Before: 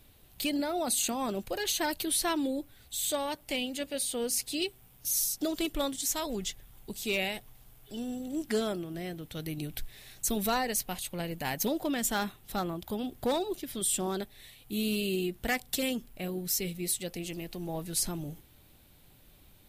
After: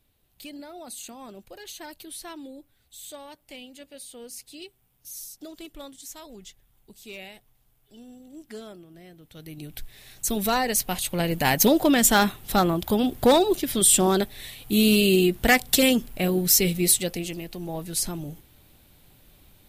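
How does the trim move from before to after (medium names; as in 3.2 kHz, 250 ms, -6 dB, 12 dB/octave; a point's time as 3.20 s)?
9.11 s -10 dB
9.81 s +0.5 dB
11.45 s +12 dB
16.90 s +12 dB
17.42 s +3.5 dB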